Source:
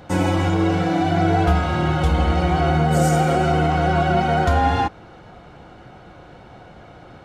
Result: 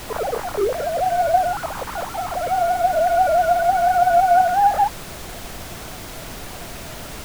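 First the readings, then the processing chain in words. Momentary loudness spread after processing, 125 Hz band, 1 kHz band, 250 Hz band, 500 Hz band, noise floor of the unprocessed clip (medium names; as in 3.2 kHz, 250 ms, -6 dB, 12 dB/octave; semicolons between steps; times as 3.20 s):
18 LU, -18.5 dB, +4.0 dB, -16.0 dB, +3.0 dB, -44 dBFS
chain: formants replaced by sine waves; low-pass 1.2 kHz 12 dB/octave; added noise pink -34 dBFS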